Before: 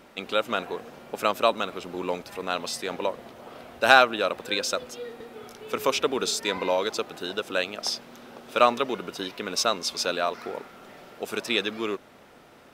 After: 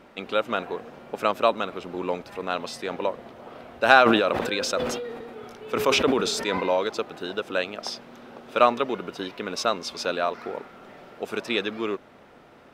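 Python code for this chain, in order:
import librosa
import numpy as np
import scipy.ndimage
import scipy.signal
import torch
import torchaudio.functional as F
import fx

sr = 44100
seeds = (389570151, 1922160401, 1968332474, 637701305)

y = fx.high_shelf(x, sr, hz=4600.0, db=-12.0)
y = fx.sustainer(y, sr, db_per_s=33.0, at=(4.04, 6.77), fade=0.02)
y = y * 10.0 ** (1.5 / 20.0)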